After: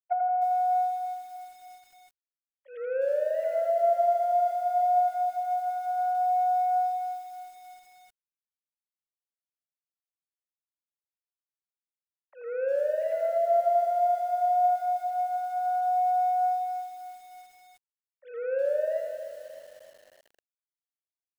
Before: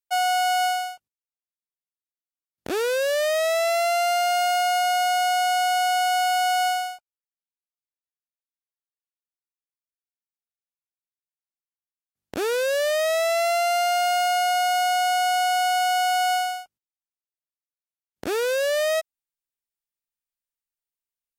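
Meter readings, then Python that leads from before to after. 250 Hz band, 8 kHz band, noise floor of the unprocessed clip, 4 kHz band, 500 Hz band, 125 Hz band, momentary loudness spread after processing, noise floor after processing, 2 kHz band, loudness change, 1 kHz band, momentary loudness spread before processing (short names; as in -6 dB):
under -30 dB, under -25 dB, under -85 dBFS, under -30 dB, -3.0 dB, n/a, 16 LU, under -85 dBFS, -20.5 dB, -4.5 dB, -3.0 dB, 7 LU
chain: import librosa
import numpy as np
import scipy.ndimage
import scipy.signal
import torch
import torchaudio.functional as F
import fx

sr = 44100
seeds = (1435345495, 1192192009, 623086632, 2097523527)

y = fx.sine_speech(x, sr)
y = fx.lowpass(y, sr, hz=2200.0, slope=6)
y = fx.hum_notches(y, sr, base_hz=50, count=7)
y = fx.over_compress(y, sr, threshold_db=-24.0, ratio=-1.0)
y = fx.env_lowpass_down(y, sr, base_hz=770.0, full_db=-23.5)
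y = scipy.signal.sosfilt(scipy.signal.butter(4, 230.0, 'highpass', fs=sr, output='sos'), y)
y = fx.echo_feedback(y, sr, ms=82, feedback_pct=53, wet_db=-5.5)
y = fx.echo_crushed(y, sr, ms=310, feedback_pct=55, bits=8, wet_db=-10.0)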